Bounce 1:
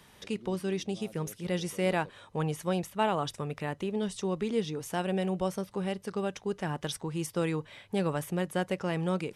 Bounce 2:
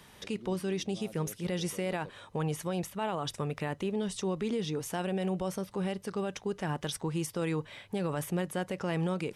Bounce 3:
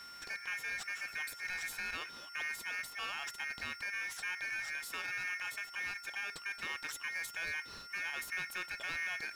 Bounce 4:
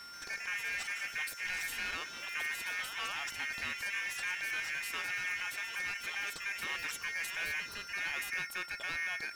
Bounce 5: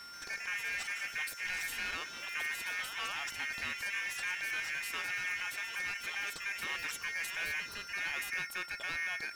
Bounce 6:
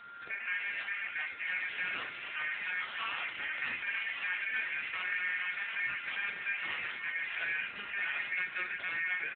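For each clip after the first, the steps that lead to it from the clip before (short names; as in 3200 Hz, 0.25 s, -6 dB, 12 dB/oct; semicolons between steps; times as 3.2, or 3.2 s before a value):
limiter -26 dBFS, peak gain reduction 10 dB; gain +2 dB
whine 3400 Hz -46 dBFS; ring modulator 2000 Hz; power-law curve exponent 0.7; gain -7 dB
echoes that change speed 0.133 s, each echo +2 st, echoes 3, each echo -6 dB; gain +1.5 dB
nothing audible
echo 1.144 s -9.5 dB; on a send at -2.5 dB: reverb, pre-delay 22 ms; on the sum: gain +1.5 dB; AMR-NB 7.95 kbps 8000 Hz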